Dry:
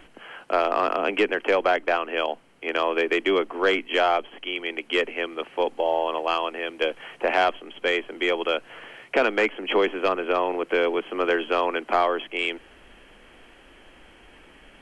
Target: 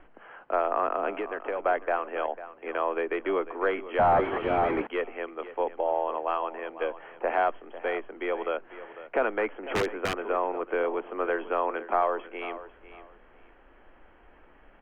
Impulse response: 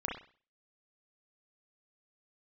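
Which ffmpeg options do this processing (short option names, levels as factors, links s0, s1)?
-filter_complex "[0:a]asettb=1/sr,asplit=3[s0][s1][s2];[s0]atrim=end=1.124[s3];[s1]atrim=start=1.12:end=1.66,asetpts=PTS-STARTPTS,afade=t=in:d=0.004:c=qsin,afade=t=out:st=0.536:d=0.004:c=qsin,acompressor=threshold=0.0708:ratio=6[s4];[s2]atrim=start=1.656[s5];[s3][s4]acrossfade=d=0.004:c1=hsin:c2=qsin[s6];[s6][s5]acrossfade=d=0.004:c1=qsin:c2=hsin,equalizer=f=160:w=0.32:g=-9.5,aecho=1:1:498|996:0.188|0.0433,asettb=1/sr,asplit=3[s7][s8][s9];[s7]atrim=end=3.994[s10];[s8]atrim=start=3.99:end=4.87,asetpts=PTS-STARTPTS,afade=t=in:d=0.004:c=qsin,afade=t=out:st=0.876:d=0.004:c=qsin,asplit=2[s11][s12];[s12]highpass=f=720:p=1,volume=63.1,asoftclip=type=tanh:threshold=0.237[s13];[s11][s13]amix=inputs=2:normalize=0,lowpass=f=1100:p=1,volume=0.501[s14];[s9]atrim=start=4.866[s15];[s10][s14]acrossfade=d=0.004:c1=hsin:c2=qsin[s16];[s16][s15]acrossfade=d=0.004:c1=qsin:c2=hsin,lowpass=1400,asettb=1/sr,asplit=3[s17][s18][s19];[s17]atrim=end=9.574[s20];[s18]atrim=start=9.57:end=10.18,asetpts=PTS-STARTPTS,afade=t=in:d=0.004:c=qsin,afade=t=out:st=0.606:d=0.004:c=qsin,aeval=exprs='(mod(8.91*val(0)+1,2)-1)/8.91':c=same[s21];[s19]atrim=start=10.176[s22];[s20][s21]acrossfade=d=0.004:c1=hsin:c2=qsin[s23];[s23][s22]acrossfade=d=0.004:c1=qsin:c2=hsin,aemphasis=mode=reproduction:type=75fm"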